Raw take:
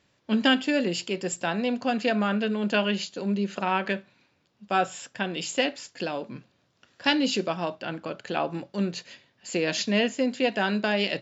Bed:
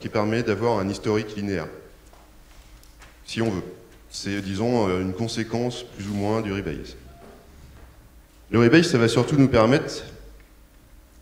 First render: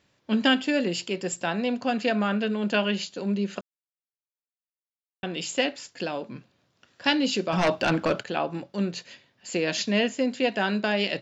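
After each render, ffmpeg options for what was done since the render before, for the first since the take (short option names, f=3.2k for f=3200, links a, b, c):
-filter_complex "[0:a]asplit=3[a][b][c];[a]afade=t=out:st=7.52:d=0.02[d];[b]aeval=exprs='0.158*sin(PI/2*2.51*val(0)/0.158)':c=same,afade=t=in:st=7.52:d=0.02,afade=t=out:st=8.22:d=0.02[e];[c]afade=t=in:st=8.22:d=0.02[f];[d][e][f]amix=inputs=3:normalize=0,asplit=3[g][h][i];[g]atrim=end=3.61,asetpts=PTS-STARTPTS,afade=t=out:st=3.606:d=0.004:c=hsin[j];[h]atrim=start=3.61:end=5.23,asetpts=PTS-STARTPTS,volume=0[k];[i]atrim=start=5.23,asetpts=PTS-STARTPTS,afade=t=in:d=0.004:c=hsin[l];[j][k][l]concat=n=3:v=0:a=1"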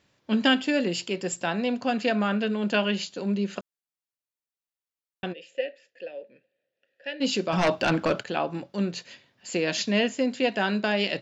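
-filter_complex "[0:a]asplit=3[a][b][c];[a]afade=t=out:st=5.32:d=0.02[d];[b]asplit=3[e][f][g];[e]bandpass=f=530:t=q:w=8,volume=0dB[h];[f]bandpass=f=1.84k:t=q:w=8,volume=-6dB[i];[g]bandpass=f=2.48k:t=q:w=8,volume=-9dB[j];[h][i][j]amix=inputs=3:normalize=0,afade=t=in:st=5.32:d=0.02,afade=t=out:st=7.2:d=0.02[k];[c]afade=t=in:st=7.2:d=0.02[l];[d][k][l]amix=inputs=3:normalize=0"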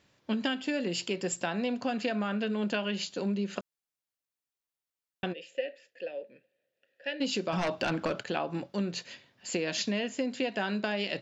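-af "acompressor=threshold=-27dB:ratio=10"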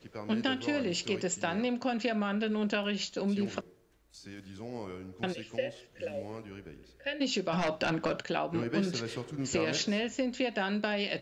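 -filter_complex "[1:a]volume=-19dB[a];[0:a][a]amix=inputs=2:normalize=0"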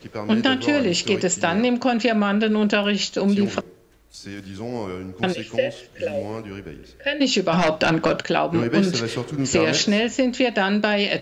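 -af "volume=11.5dB"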